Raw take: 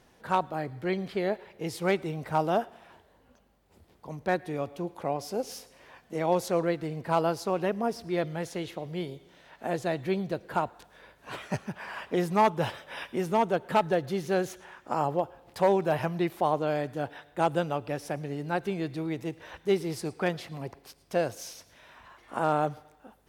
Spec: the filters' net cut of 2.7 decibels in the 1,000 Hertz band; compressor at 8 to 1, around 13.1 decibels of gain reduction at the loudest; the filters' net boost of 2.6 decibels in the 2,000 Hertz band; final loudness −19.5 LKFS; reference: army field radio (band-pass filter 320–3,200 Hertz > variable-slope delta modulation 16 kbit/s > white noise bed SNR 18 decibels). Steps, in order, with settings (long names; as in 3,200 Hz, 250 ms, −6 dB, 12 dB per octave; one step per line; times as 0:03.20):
parametric band 1,000 Hz −4.5 dB
parametric band 2,000 Hz +5.5 dB
downward compressor 8 to 1, threshold −33 dBFS
band-pass filter 320–3,200 Hz
variable-slope delta modulation 16 kbit/s
white noise bed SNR 18 dB
level +22 dB